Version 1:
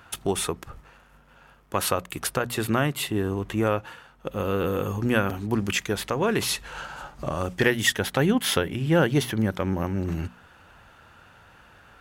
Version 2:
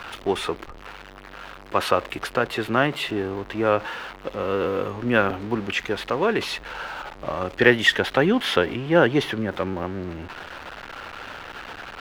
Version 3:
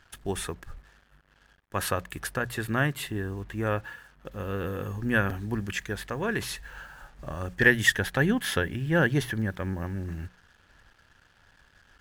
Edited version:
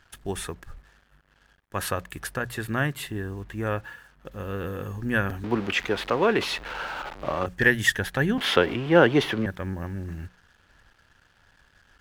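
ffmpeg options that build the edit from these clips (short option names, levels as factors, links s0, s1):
-filter_complex "[1:a]asplit=2[s0][s1];[2:a]asplit=3[s2][s3][s4];[s2]atrim=end=5.442[s5];[s0]atrim=start=5.438:end=7.462[s6];[s3]atrim=start=7.458:end=8.382[s7];[s1]atrim=start=8.378:end=9.462[s8];[s4]atrim=start=9.458[s9];[s5][s6]acrossfade=d=0.004:c1=hsin:c2=hsin[s10];[s10][s7]acrossfade=d=0.004:c1=hsin:c2=hsin[s11];[s11][s8]acrossfade=d=0.004:c1=hsin:c2=hsin[s12];[s12][s9]acrossfade=d=0.004:c1=hsin:c2=hsin"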